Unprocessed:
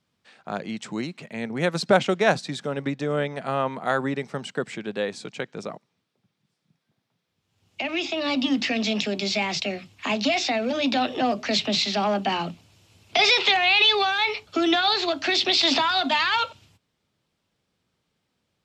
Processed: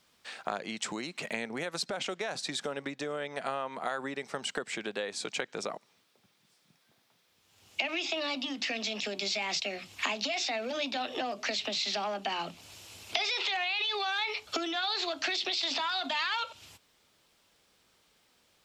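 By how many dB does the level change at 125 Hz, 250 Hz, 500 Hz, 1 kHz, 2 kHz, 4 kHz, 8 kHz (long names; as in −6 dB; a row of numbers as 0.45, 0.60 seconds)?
−17.0, −14.0, −10.5, −10.0, −8.5, −8.5, −3.0 decibels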